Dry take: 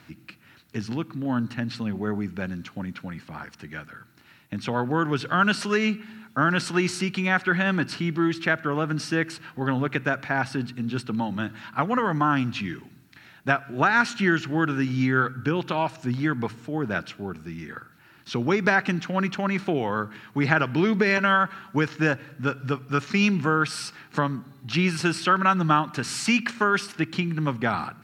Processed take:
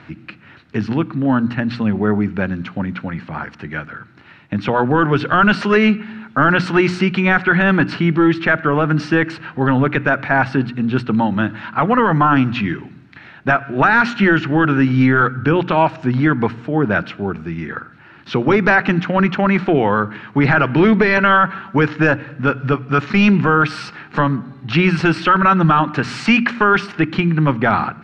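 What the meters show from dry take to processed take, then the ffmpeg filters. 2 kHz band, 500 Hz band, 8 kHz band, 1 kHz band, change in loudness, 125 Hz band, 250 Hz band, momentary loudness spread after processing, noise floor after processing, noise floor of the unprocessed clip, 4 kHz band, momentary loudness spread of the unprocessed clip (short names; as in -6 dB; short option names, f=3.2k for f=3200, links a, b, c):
+8.0 dB, +9.5 dB, n/a, +9.0 dB, +9.0 dB, +9.5 dB, +9.5 dB, 12 LU, -43 dBFS, -54 dBFS, +4.5 dB, 13 LU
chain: -af "lowpass=2.6k,bandreject=f=60:t=h:w=6,bandreject=f=120:t=h:w=6,bandreject=f=180:t=h:w=6,bandreject=f=240:t=h:w=6,bandreject=f=300:t=h:w=6,apsyclip=17.5dB,volume=-6dB"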